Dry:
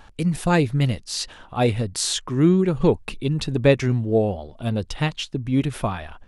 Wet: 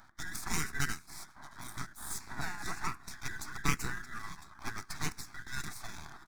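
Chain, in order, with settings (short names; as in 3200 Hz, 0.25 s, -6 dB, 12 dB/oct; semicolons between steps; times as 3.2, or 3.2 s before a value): band inversion scrambler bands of 2000 Hz; low-pass opened by the level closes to 2000 Hz, open at -14 dBFS; 1.03–1.78 band shelf 3100 Hz -15 dB 2.7 oct; echo 0.622 s -23 dB; reverb RT60 0.95 s, pre-delay 7 ms, DRR 21 dB; spectral gate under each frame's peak -20 dB weak; half-wave rectifier; dynamic EQ 1200 Hz, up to -5 dB, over -54 dBFS, Q 0.82; envelope phaser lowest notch 480 Hz, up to 2100 Hz, full sweep at -15.5 dBFS; gain +9 dB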